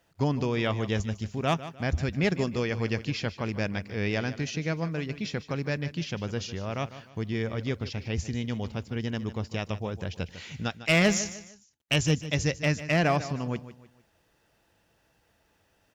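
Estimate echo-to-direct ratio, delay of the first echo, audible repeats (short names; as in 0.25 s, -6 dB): -13.5 dB, 0.151 s, 3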